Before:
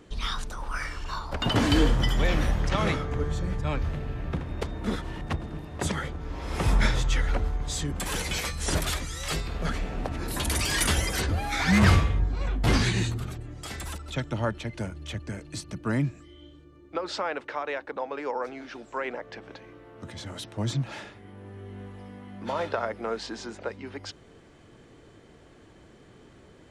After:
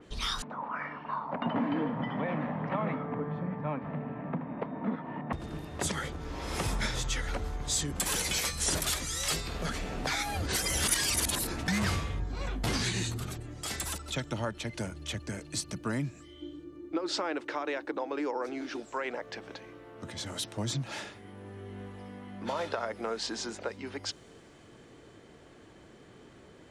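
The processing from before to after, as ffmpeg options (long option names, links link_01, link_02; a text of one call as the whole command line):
ffmpeg -i in.wav -filter_complex "[0:a]asettb=1/sr,asplit=3[link_01][link_02][link_03];[link_01]atrim=end=0.424[link_04];[link_02]atrim=start=0.42:end=5.33,asetpts=PTS-STARTPTS,afade=type=in:duration=0.004:curve=qsin,afade=type=out:start_time=4.906:duration=0.004:curve=qsin,highpass=frequency=150:width=0.5412,highpass=frequency=150:width=1.3066,equalizer=frequency=160:width_type=q:width=4:gain=6,equalizer=frequency=250:width_type=q:width=4:gain=9,equalizer=frequency=360:width_type=q:width=4:gain=-7,equalizer=frequency=650:width_type=q:width=4:gain=4,equalizer=frequency=960:width_type=q:width=4:gain=6,equalizer=frequency=1500:width_type=q:width=4:gain=-5,lowpass=frequency=2000:width=0.5412,lowpass=frequency=2000:width=1.3066[link_05];[link_03]atrim=start=5.326[link_06];[link_04][link_05]acrossfade=duration=0.004:curve1=hsin:curve2=qsin[link_07];[link_07][link_06]acrossfade=duration=0.004:curve1=qsin:curve2=hsin,asettb=1/sr,asplit=3[link_08][link_09][link_10];[link_08]atrim=end=16.414[link_11];[link_09]atrim=start=16.41:end=18.8,asetpts=PTS-STARTPTS,afade=type=in:duration=0.004:curve=qsin,afade=type=out:start_time=2.386:duration=0.004:curve=qsin,equalizer=frequency=320:width_type=o:width=0.36:gain=15[link_12];[link_10]atrim=start=18.796[link_13];[link_11][link_12]acrossfade=duration=0.004:curve1=hsin:curve2=qsin[link_14];[link_14][link_13]acrossfade=duration=0.004:curve1=qsin:curve2=hsin,asplit=3[link_15][link_16][link_17];[link_15]atrim=end=10.072[link_18];[link_16]atrim=start=10.068:end=11.682,asetpts=PTS-STARTPTS,areverse[link_19];[link_17]atrim=start=11.678[link_20];[link_18][link_19]acrossfade=duration=0.004:curve1=hsin:curve2=hsin[link_21];[link_21][link_20]acrossfade=duration=0.004:curve1=hsin:curve2=hsin,lowshelf=frequency=92:gain=-7.5,acompressor=threshold=-31dB:ratio=2.5,adynamicequalizer=threshold=0.00282:dfrequency=3800:dqfactor=0.7:tfrequency=3800:tqfactor=0.7:attack=5:release=100:ratio=0.375:range=3.5:mode=boostabove:tftype=highshelf" out.wav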